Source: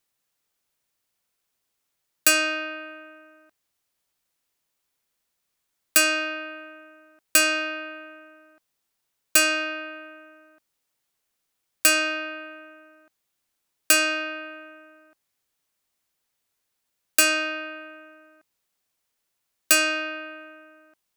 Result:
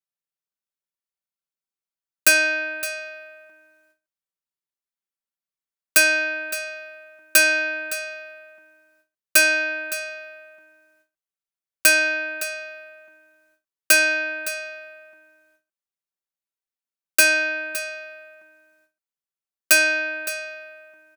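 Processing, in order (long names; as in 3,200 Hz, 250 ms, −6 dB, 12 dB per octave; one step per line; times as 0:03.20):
single-tap delay 564 ms −13.5 dB
noise gate with hold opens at −56 dBFS
parametric band 1,400 Hz +2.5 dB 0.52 octaves
comb filter 5.2 ms, depth 84%
every ending faded ahead of time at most 280 dB per second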